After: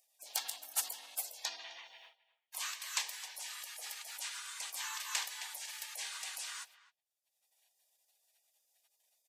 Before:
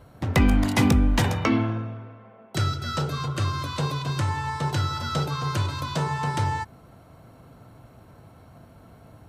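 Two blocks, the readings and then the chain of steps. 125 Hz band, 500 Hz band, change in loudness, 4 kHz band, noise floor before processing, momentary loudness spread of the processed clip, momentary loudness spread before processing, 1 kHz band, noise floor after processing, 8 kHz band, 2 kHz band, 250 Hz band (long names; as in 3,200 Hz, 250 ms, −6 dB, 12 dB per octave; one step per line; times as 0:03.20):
below −40 dB, −29.0 dB, −14.5 dB, −7.0 dB, −51 dBFS, 11 LU, 10 LU, −21.0 dB, below −85 dBFS, +0.5 dB, −12.5 dB, below −40 dB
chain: noise gate −40 dBFS, range −38 dB
Chebyshev high-pass filter 1,200 Hz, order 4
gate on every frequency bin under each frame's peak −25 dB weak
in parallel at +0.5 dB: upward compression, threshold −50 dBFS
on the sum: far-end echo of a speakerphone 260 ms, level −17 dB
level +2 dB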